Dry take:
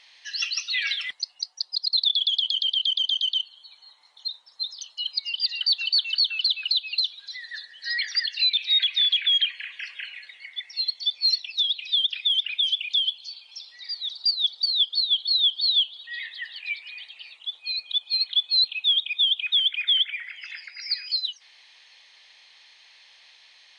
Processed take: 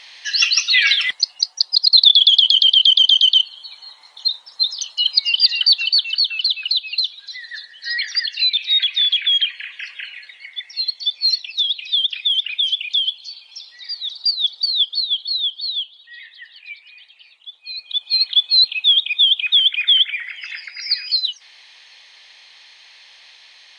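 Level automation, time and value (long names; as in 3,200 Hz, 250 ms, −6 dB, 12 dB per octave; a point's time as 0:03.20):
0:05.39 +12 dB
0:06.11 +4.5 dB
0:14.80 +4.5 dB
0:15.99 −4.5 dB
0:17.58 −4.5 dB
0:18.16 +7.5 dB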